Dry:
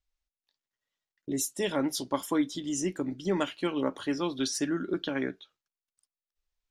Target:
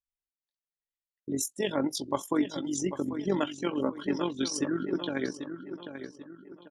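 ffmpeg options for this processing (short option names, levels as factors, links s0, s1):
-filter_complex "[0:a]afftdn=nr=17:nf=-39,asplit=2[s0][s1];[s1]adelay=791,lowpass=f=4200:p=1,volume=0.335,asplit=2[s2][s3];[s3]adelay=791,lowpass=f=4200:p=1,volume=0.4,asplit=2[s4][s5];[s5]adelay=791,lowpass=f=4200:p=1,volume=0.4,asplit=2[s6][s7];[s7]adelay=791,lowpass=f=4200:p=1,volume=0.4[s8];[s0][s2][s4][s6][s8]amix=inputs=5:normalize=0,tremolo=f=46:d=0.571,volume=1.33"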